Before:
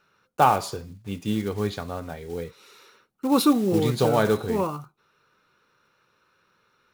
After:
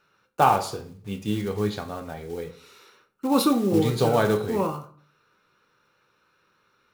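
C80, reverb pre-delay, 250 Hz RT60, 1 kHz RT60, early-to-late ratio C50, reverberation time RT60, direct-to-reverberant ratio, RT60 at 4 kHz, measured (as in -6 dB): 18.0 dB, 9 ms, 0.60 s, 0.45 s, 13.5 dB, 0.50 s, 6.5 dB, 0.35 s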